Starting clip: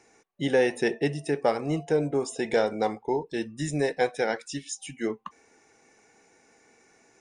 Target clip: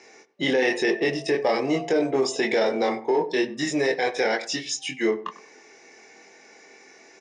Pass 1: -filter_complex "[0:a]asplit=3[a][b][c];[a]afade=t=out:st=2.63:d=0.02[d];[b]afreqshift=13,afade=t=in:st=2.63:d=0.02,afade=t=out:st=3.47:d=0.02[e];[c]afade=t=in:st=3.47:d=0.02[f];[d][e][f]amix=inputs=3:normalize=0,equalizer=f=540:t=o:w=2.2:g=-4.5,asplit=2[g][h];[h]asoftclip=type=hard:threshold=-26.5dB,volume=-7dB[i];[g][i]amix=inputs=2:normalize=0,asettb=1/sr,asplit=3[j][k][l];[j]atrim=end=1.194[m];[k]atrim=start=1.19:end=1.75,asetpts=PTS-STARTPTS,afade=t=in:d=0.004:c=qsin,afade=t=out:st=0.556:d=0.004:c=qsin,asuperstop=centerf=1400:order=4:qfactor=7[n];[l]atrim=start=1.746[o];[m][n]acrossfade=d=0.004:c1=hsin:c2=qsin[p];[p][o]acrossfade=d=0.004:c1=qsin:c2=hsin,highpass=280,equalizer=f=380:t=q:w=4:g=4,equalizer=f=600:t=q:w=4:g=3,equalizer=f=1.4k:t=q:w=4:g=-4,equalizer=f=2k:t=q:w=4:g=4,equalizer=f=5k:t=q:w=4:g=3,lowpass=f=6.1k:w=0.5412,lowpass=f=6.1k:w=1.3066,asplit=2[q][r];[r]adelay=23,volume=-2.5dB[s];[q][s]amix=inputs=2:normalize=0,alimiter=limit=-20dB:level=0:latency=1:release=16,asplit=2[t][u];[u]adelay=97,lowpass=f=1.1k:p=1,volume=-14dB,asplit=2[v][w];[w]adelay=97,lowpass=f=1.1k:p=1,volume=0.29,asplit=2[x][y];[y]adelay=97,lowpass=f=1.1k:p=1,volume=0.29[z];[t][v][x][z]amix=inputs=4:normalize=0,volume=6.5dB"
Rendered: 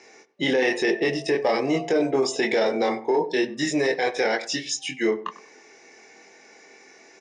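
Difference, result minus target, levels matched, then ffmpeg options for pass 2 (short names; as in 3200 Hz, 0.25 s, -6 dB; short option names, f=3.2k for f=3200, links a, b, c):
hard clip: distortion -6 dB
-filter_complex "[0:a]asplit=3[a][b][c];[a]afade=t=out:st=2.63:d=0.02[d];[b]afreqshift=13,afade=t=in:st=2.63:d=0.02,afade=t=out:st=3.47:d=0.02[e];[c]afade=t=in:st=3.47:d=0.02[f];[d][e][f]amix=inputs=3:normalize=0,equalizer=f=540:t=o:w=2.2:g=-4.5,asplit=2[g][h];[h]asoftclip=type=hard:threshold=-35.5dB,volume=-7dB[i];[g][i]amix=inputs=2:normalize=0,asettb=1/sr,asplit=3[j][k][l];[j]atrim=end=1.194[m];[k]atrim=start=1.19:end=1.75,asetpts=PTS-STARTPTS,afade=t=in:d=0.004:c=qsin,afade=t=out:st=0.556:d=0.004:c=qsin,asuperstop=centerf=1400:order=4:qfactor=7[n];[l]atrim=start=1.746[o];[m][n]acrossfade=d=0.004:c1=hsin:c2=qsin[p];[p][o]acrossfade=d=0.004:c1=qsin:c2=hsin,highpass=280,equalizer=f=380:t=q:w=4:g=4,equalizer=f=600:t=q:w=4:g=3,equalizer=f=1.4k:t=q:w=4:g=-4,equalizer=f=2k:t=q:w=4:g=4,equalizer=f=5k:t=q:w=4:g=3,lowpass=f=6.1k:w=0.5412,lowpass=f=6.1k:w=1.3066,asplit=2[q][r];[r]adelay=23,volume=-2.5dB[s];[q][s]amix=inputs=2:normalize=0,alimiter=limit=-20dB:level=0:latency=1:release=16,asplit=2[t][u];[u]adelay=97,lowpass=f=1.1k:p=1,volume=-14dB,asplit=2[v][w];[w]adelay=97,lowpass=f=1.1k:p=1,volume=0.29,asplit=2[x][y];[y]adelay=97,lowpass=f=1.1k:p=1,volume=0.29[z];[t][v][x][z]amix=inputs=4:normalize=0,volume=6.5dB"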